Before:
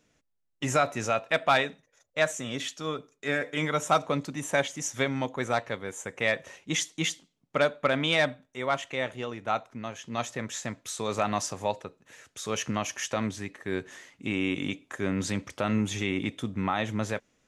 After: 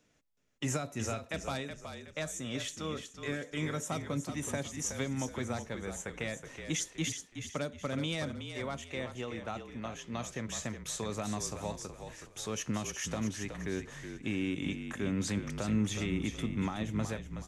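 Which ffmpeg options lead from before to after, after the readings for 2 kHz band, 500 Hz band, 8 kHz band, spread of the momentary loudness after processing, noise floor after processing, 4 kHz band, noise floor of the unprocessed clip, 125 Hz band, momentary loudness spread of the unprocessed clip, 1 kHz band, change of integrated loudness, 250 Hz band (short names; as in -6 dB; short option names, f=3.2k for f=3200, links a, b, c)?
-10.5 dB, -9.5 dB, -2.5 dB, 7 LU, -57 dBFS, -7.5 dB, -75 dBFS, -1.5 dB, 10 LU, -12.5 dB, -7.0 dB, -3.0 dB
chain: -filter_complex "[0:a]acrossover=split=330|5200[a][b][c];[b]acompressor=threshold=-36dB:ratio=6[d];[a][d][c]amix=inputs=3:normalize=0,asplit=5[e][f][g][h][i];[f]adelay=371,afreqshift=-39,volume=-8dB[j];[g]adelay=742,afreqshift=-78,volume=-16.9dB[k];[h]adelay=1113,afreqshift=-117,volume=-25.7dB[l];[i]adelay=1484,afreqshift=-156,volume=-34.6dB[m];[e][j][k][l][m]amix=inputs=5:normalize=0,volume=-2.5dB"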